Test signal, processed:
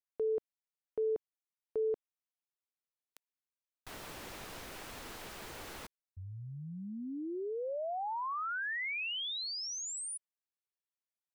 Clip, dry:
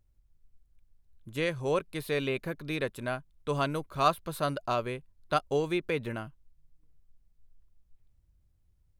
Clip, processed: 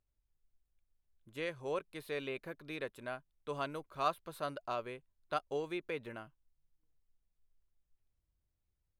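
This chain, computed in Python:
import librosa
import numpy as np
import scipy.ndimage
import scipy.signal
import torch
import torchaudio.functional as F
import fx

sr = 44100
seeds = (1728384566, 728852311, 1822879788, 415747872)

y = fx.bass_treble(x, sr, bass_db=-8, treble_db=-4)
y = F.gain(torch.from_numpy(y), -8.0).numpy()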